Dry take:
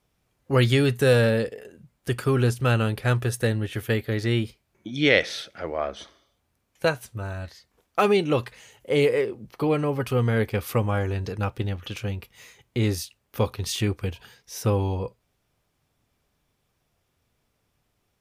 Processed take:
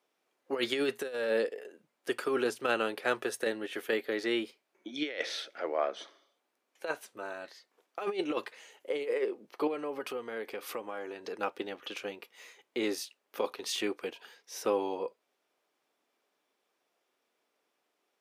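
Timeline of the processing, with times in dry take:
0:09.67–0:11.33: downward compressor, threshold −28 dBFS
whole clip: high-pass filter 310 Hz 24 dB per octave; compressor whose output falls as the input rises −24 dBFS, ratio −0.5; high-shelf EQ 6,400 Hz −7.5 dB; level −4.5 dB

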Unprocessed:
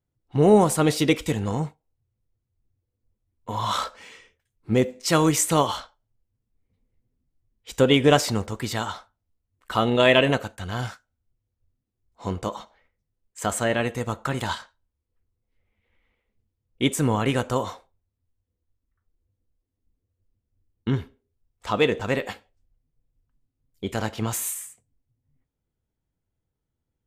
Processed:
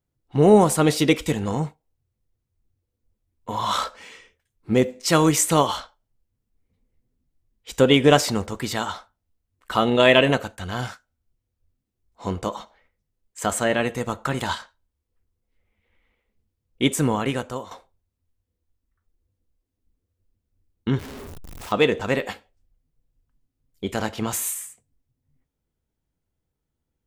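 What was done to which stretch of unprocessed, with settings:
0:17.01–0:17.71: fade out, to −13.5 dB
0:20.99–0:21.72: sign of each sample alone
whole clip: parametric band 110 Hz −8 dB 0.23 octaves; level +2 dB

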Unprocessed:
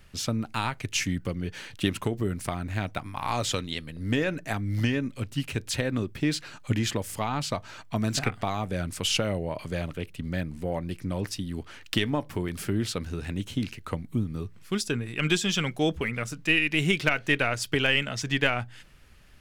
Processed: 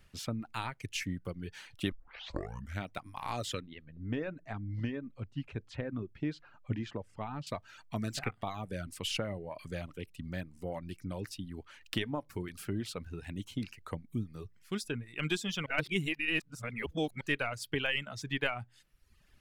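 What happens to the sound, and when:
0:01.92: tape start 0.92 s
0:03.60–0:07.47: head-to-tape spacing loss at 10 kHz 30 dB
0:15.66–0:17.21: reverse
whole clip: reverb reduction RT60 0.88 s; dynamic equaliser 6,300 Hz, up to −5 dB, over −45 dBFS, Q 1.5; level −7.5 dB

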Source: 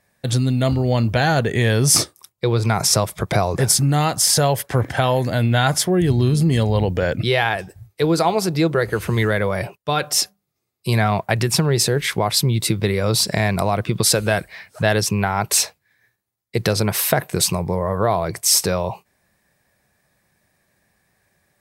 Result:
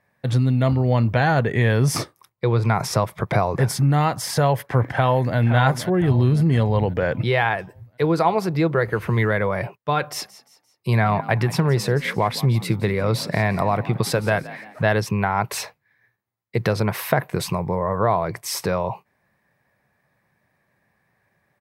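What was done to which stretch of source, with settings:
0:04.90–0:05.37: delay throw 520 ms, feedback 45%, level −10 dB
0:10.04–0:14.93: echo with shifted repeats 173 ms, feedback 41%, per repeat +52 Hz, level −17 dB
whole clip: octave-band graphic EQ 125/250/500/1,000/2,000/8,000 Hz +9/+5/+5/+9/+7/−6 dB; level −9.5 dB

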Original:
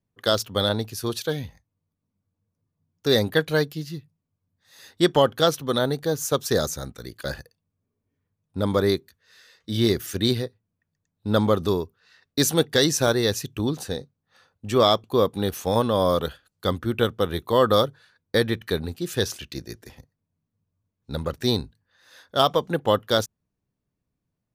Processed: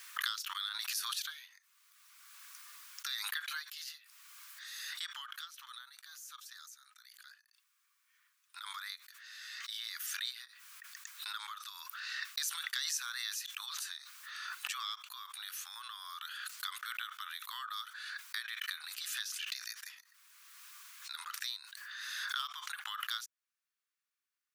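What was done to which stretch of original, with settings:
0:05.21–0:08.88: duck −23 dB, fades 0.25 s
whole clip: downward compressor 6 to 1, threshold −33 dBFS; Butterworth high-pass 1,200 Hz 48 dB per octave; background raised ahead of every attack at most 23 dB per second; level +1 dB

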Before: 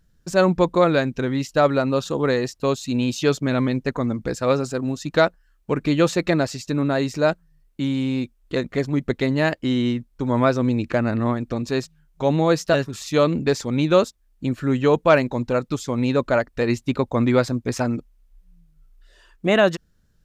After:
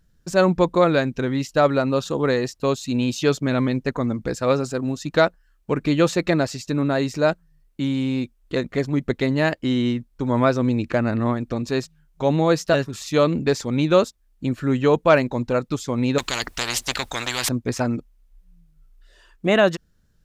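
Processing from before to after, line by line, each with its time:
0:16.18–0:17.49: every bin compressed towards the loudest bin 10 to 1

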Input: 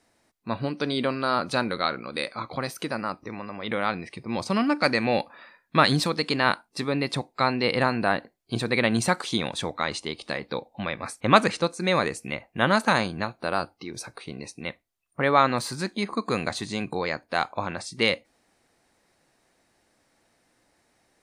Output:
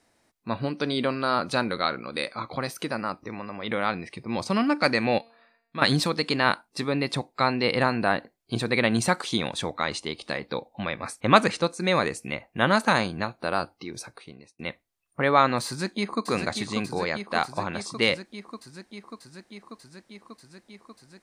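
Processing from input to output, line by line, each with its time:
0:05.18–0:05.82: tuned comb filter 230 Hz, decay 0.74 s, mix 80%
0:13.89–0:14.59: fade out
0:15.66–0:16.27: delay throw 590 ms, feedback 80%, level −6 dB

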